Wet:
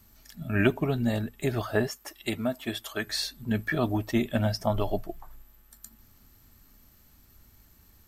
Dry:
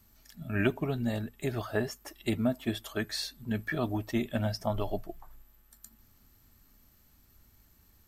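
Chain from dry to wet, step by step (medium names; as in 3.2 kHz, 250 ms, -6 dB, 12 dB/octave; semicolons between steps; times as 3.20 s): 1.87–3.07 s: bass shelf 410 Hz -9 dB; trim +4.5 dB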